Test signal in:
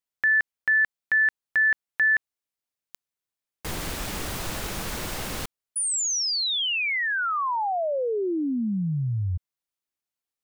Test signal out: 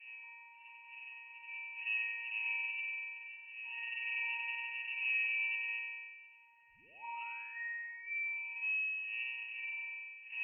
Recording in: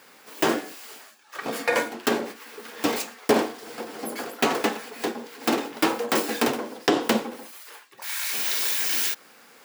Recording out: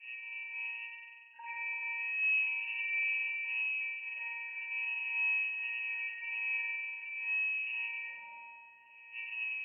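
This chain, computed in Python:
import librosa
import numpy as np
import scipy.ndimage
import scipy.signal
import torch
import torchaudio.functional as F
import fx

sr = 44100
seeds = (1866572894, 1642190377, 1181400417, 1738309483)

y = fx.bin_expand(x, sr, power=1.5)
y = fx.dmg_wind(y, sr, seeds[0], corner_hz=420.0, level_db=-40.0)
y = scipy.signal.sosfilt(scipy.signal.butter(4, 70.0, 'highpass', fs=sr, output='sos'), y)
y = fx.notch(y, sr, hz=1500.0, q=5.2)
y = fx.over_compress(y, sr, threshold_db=-36.0, ratio=-1.0)
y = fx.quant_dither(y, sr, seeds[1], bits=8, dither='none')
y = fx.octave_resonator(y, sr, note='A#', decay_s=0.71)
y = fx.room_flutter(y, sr, wall_m=8.1, rt60_s=1.4)
y = fx.freq_invert(y, sr, carrier_hz=2800)
y = y * librosa.db_to_amplitude(7.0)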